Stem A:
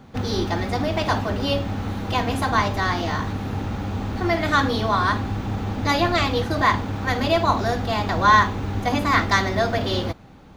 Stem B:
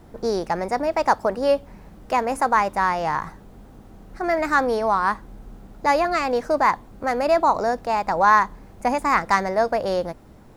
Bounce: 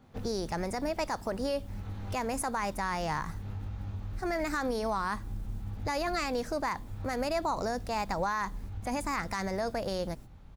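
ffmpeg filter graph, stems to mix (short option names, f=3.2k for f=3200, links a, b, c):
-filter_complex "[0:a]asubboost=boost=5.5:cutoff=110,acompressor=threshold=-23dB:ratio=12,flanger=delay=19.5:depth=5.4:speed=0.54,volume=-9.5dB[a];[1:a]agate=range=-18dB:threshold=-41dB:ratio=16:detection=peak,equalizer=f=800:w=0.31:g=-12,volume=-1,adelay=21,volume=2.5dB,asplit=2[b][c];[c]apad=whole_len=465874[d];[a][d]sidechaincompress=threshold=-42dB:ratio=8:attack=31:release=197[e];[e][b]amix=inputs=2:normalize=0,alimiter=limit=-22dB:level=0:latency=1:release=56"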